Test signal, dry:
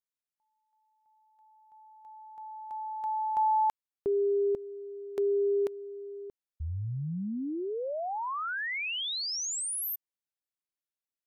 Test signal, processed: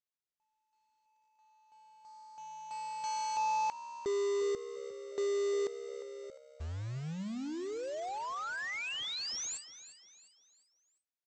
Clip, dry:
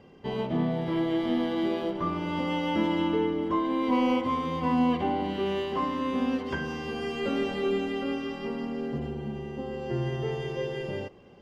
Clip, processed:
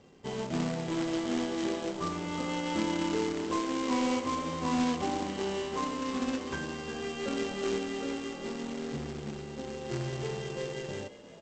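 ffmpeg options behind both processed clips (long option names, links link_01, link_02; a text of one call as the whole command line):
ffmpeg -i in.wav -filter_complex "[0:a]aresample=16000,acrusher=bits=2:mode=log:mix=0:aa=0.000001,aresample=44100,asplit=5[link_01][link_02][link_03][link_04][link_05];[link_02]adelay=352,afreqshift=68,volume=-14.5dB[link_06];[link_03]adelay=704,afreqshift=136,volume=-22dB[link_07];[link_04]adelay=1056,afreqshift=204,volume=-29.6dB[link_08];[link_05]adelay=1408,afreqshift=272,volume=-37.1dB[link_09];[link_01][link_06][link_07][link_08][link_09]amix=inputs=5:normalize=0,volume=-5dB" out.wav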